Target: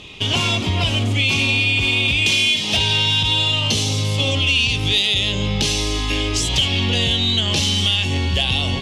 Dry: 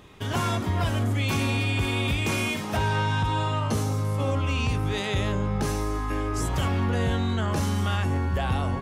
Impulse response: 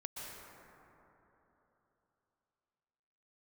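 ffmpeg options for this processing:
-af "asetnsamples=n=441:p=0,asendcmd='2.26 highshelf g 14',highshelf=f=2.1k:t=q:w=3:g=8.5,acompressor=threshold=-22dB:ratio=3,lowpass=6.2k,asoftclip=type=tanh:threshold=-12.5dB,volume=7dB"

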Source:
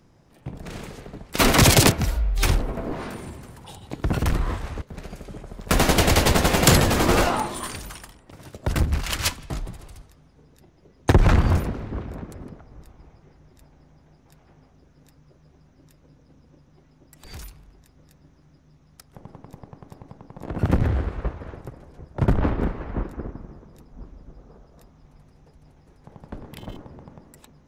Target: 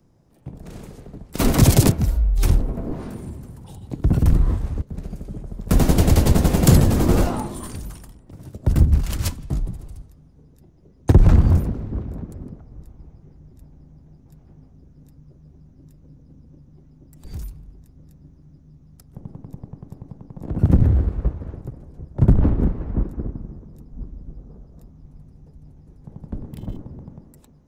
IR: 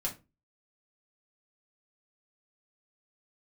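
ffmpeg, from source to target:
-filter_complex "[0:a]equalizer=f=2.3k:w=0.41:g=-9.5,acrossover=split=300|7100[a][b][c];[a]dynaudnorm=f=750:g=3:m=9.5dB[d];[d][b][c]amix=inputs=3:normalize=0,volume=-1dB"

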